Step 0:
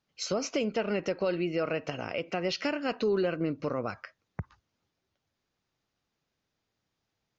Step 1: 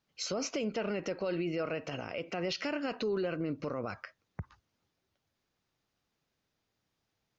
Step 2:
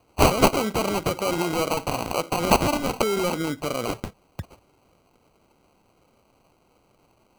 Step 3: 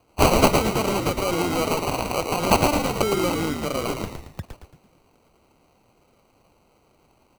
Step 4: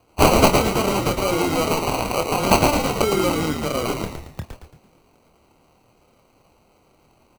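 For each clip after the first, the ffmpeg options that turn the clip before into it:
-af "alimiter=level_in=1.5dB:limit=-24dB:level=0:latency=1:release=35,volume=-1.5dB"
-af "crystalizer=i=8.5:c=0,acrusher=samples=25:mix=1:aa=0.000001,volume=6.5dB"
-filter_complex "[0:a]asplit=6[a][b][c][d][e][f];[b]adelay=112,afreqshift=-80,volume=-4.5dB[g];[c]adelay=224,afreqshift=-160,volume=-12dB[h];[d]adelay=336,afreqshift=-240,volume=-19.6dB[i];[e]adelay=448,afreqshift=-320,volume=-27.1dB[j];[f]adelay=560,afreqshift=-400,volume=-34.6dB[k];[a][g][h][i][j][k]amix=inputs=6:normalize=0"
-filter_complex "[0:a]asplit=2[a][b];[b]adelay=26,volume=-8dB[c];[a][c]amix=inputs=2:normalize=0,volume=2dB"

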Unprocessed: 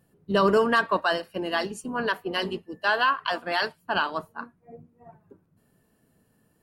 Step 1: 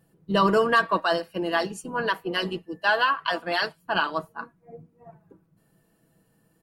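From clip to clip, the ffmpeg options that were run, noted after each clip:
-af "aecho=1:1:6.1:0.48"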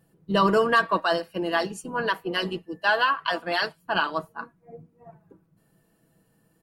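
-af anull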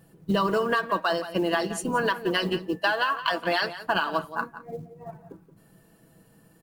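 -filter_complex "[0:a]acompressor=threshold=-29dB:ratio=8,acrusher=bits=8:mode=log:mix=0:aa=0.000001,asplit=2[a][b];[b]adelay=174.9,volume=-13dB,highshelf=f=4k:g=-3.94[c];[a][c]amix=inputs=2:normalize=0,volume=7.5dB"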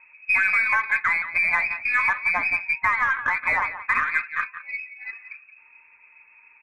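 -filter_complex "[0:a]asplit=2[a][b];[b]asoftclip=type=tanh:threshold=-22.5dB,volume=-3.5dB[c];[a][c]amix=inputs=2:normalize=0,lowpass=f=2.3k:t=q:w=0.5098,lowpass=f=2.3k:t=q:w=0.6013,lowpass=f=2.3k:t=q:w=0.9,lowpass=f=2.3k:t=q:w=2.563,afreqshift=-2700,aeval=exprs='0.355*(cos(1*acos(clip(val(0)/0.355,-1,1)))-cos(1*PI/2))+0.00447*(cos(8*acos(clip(val(0)/0.355,-1,1)))-cos(8*PI/2))':c=same"

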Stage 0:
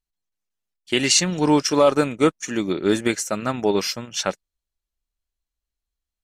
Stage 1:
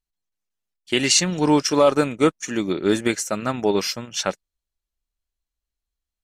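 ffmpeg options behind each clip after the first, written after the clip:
-af anull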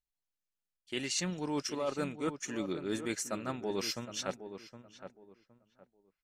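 -filter_complex "[0:a]areverse,acompressor=threshold=-23dB:ratio=6,areverse,asplit=2[a][b];[b]adelay=765,lowpass=f=1.6k:p=1,volume=-10dB,asplit=2[c][d];[d]adelay=765,lowpass=f=1.6k:p=1,volume=0.25,asplit=2[e][f];[f]adelay=765,lowpass=f=1.6k:p=1,volume=0.25[g];[a][c][e][g]amix=inputs=4:normalize=0,volume=-8.5dB"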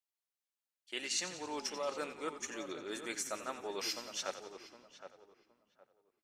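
-filter_complex "[0:a]highpass=490,asplit=8[a][b][c][d][e][f][g][h];[b]adelay=89,afreqshift=-40,volume=-12dB[i];[c]adelay=178,afreqshift=-80,volume=-16.3dB[j];[d]adelay=267,afreqshift=-120,volume=-20.6dB[k];[e]adelay=356,afreqshift=-160,volume=-24.9dB[l];[f]adelay=445,afreqshift=-200,volume=-29.2dB[m];[g]adelay=534,afreqshift=-240,volume=-33.5dB[n];[h]adelay=623,afreqshift=-280,volume=-37.8dB[o];[a][i][j][k][l][m][n][o]amix=inputs=8:normalize=0,volume=-1.5dB"

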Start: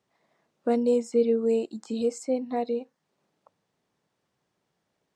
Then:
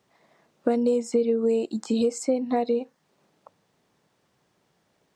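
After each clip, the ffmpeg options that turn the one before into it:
-af "acompressor=threshold=-28dB:ratio=6,volume=8.5dB"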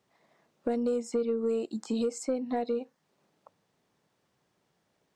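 -af "asoftclip=type=tanh:threshold=-13.5dB,volume=-5.5dB"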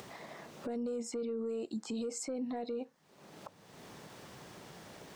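-af "acompressor=mode=upward:threshold=-32dB:ratio=2.5,alimiter=level_in=7dB:limit=-24dB:level=0:latency=1:release=16,volume=-7dB"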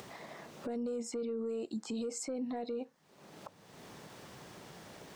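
-af anull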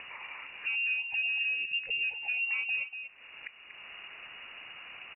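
-filter_complex "[0:a]asplit=2[a][b];[b]adelay=239.1,volume=-9dB,highshelf=f=4k:g=-5.38[c];[a][c]amix=inputs=2:normalize=0,lowpass=f=2.6k:t=q:w=0.5098,lowpass=f=2.6k:t=q:w=0.6013,lowpass=f=2.6k:t=q:w=0.9,lowpass=f=2.6k:t=q:w=2.563,afreqshift=-3000,volume=5dB"

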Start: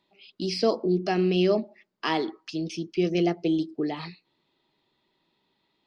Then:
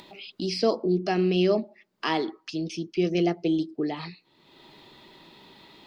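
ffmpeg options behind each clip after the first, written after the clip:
-af "acompressor=mode=upward:threshold=-33dB:ratio=2.5"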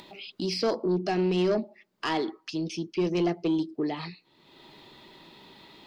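-af "asoftclip=type=tanh:threshold=-18.5dB"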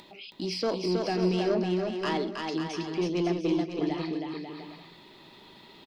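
-af "aecho=1:1:320|544|700.8|810.6|887.4:0.631|0.398|0.251|0.158|0.1,volume=-2.5dB"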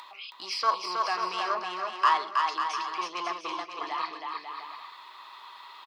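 -af "highpass=f=1.1k:t=q:w=8.2,volume=1.5dB"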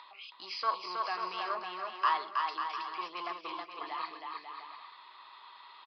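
-af "aresample=11025,aresample=44100,volume=-6dB"

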